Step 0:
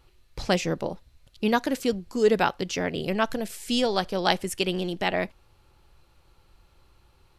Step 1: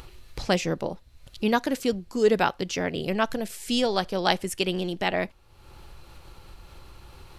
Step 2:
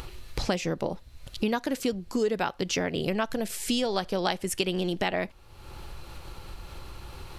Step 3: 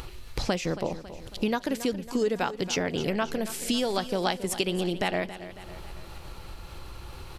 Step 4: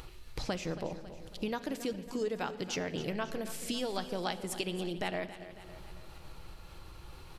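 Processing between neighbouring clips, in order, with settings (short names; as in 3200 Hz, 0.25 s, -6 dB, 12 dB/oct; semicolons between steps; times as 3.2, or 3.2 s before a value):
upward compressor, threshold -33 dBFS
compressor 6:1, threshold -29 dBFS, peak gain reduction 13.5 dB; gain +5 dB
feedback echo 0.275 s, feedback 54%, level -14 dB
reverb RT60 2.0 s, pre-delay 6 ms, DRR 11.5 dB; gain -8 dB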